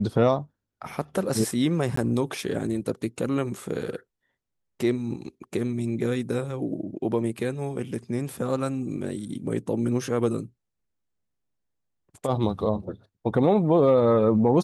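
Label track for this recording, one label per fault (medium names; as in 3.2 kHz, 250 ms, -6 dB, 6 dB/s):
1.960000	1.970000	dropout 14 ms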